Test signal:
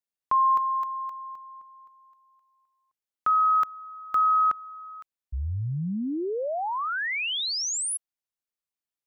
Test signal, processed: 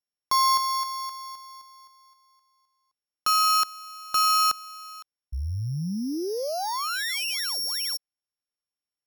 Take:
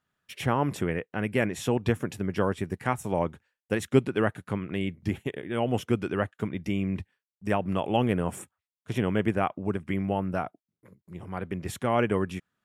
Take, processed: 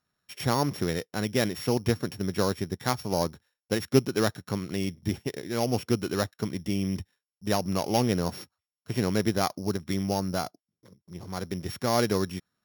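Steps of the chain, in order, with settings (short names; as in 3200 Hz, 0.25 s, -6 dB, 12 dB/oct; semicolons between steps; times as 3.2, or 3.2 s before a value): sample sorter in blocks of 8 samples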